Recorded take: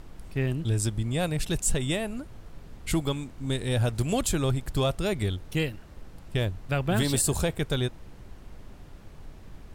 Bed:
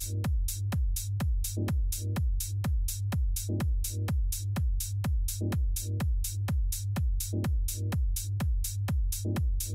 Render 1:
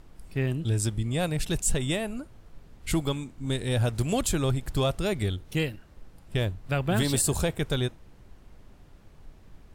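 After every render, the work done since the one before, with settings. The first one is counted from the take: noise print and reduce 6 dB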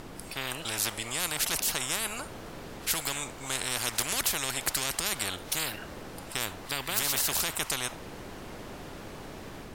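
level rider gain up to 3 dB; spectrum-flattening compressor 10:1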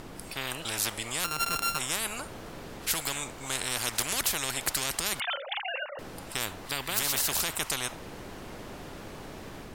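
1.24–1.79 s: sorted samples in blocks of 32 samples; 5.20–5.99 s: formants replaced by sine waves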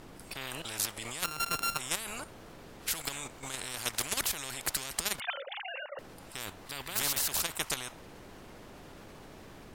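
level held to a coarse grid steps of 10 dB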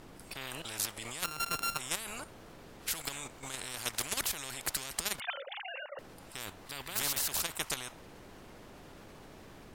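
trim -2 dB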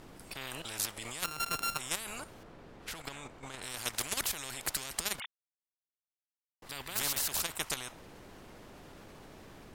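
2.43–3.62 s: low-pass 2.3 kHz 6 dB/octave; 5.26–6.62 s: mute

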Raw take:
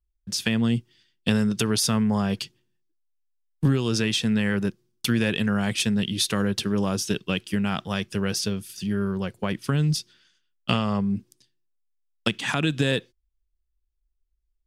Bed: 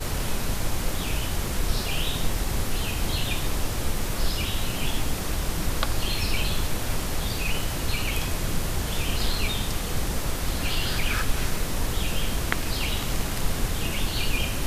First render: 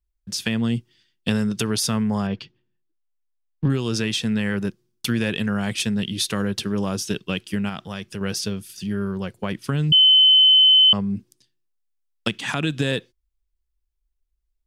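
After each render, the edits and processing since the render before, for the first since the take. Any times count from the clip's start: 2.27–3.70 s: distance through air 230 m; 7.69–8.21 s: compression 1.5:1, threshold -34 dBFS; 9.92–10.93 s: bleep 3.05 kHz -10 dBFS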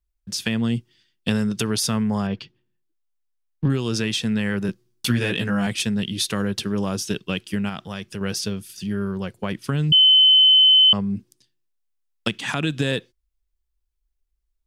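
4.67–5.67 s: doubling 16 ms -2 dB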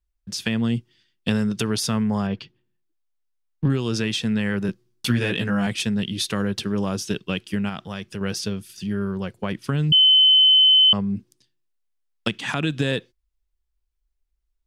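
treble shelf 6.5 kHz -5.5 dB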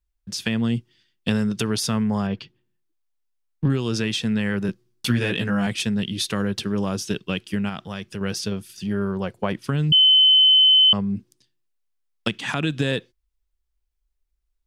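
8.51–9.61 s: dynamic bell 730 Hz, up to +6 dB, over -43 dBFS, Q 0.86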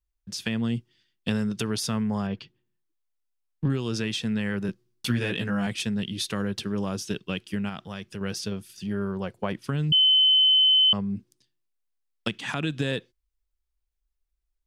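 trim -4.5 dB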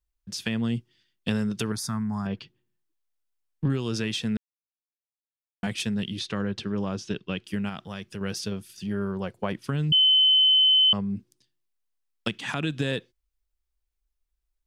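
1.72–2.26 s: static phaser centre 1.2 kHz, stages 4; 4.37–5.63 s: mute; 6.19–7.44 s: distance through air 95 m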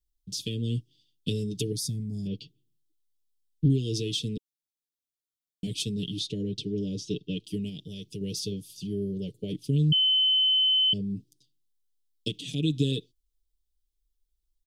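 elliptic band-stop 410–3300 Hz, stop band 70 dB; comb 6.8 ms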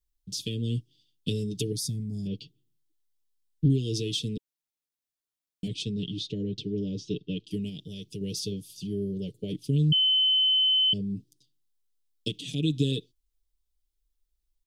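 5.68–7.51 s: distance through air 93 m

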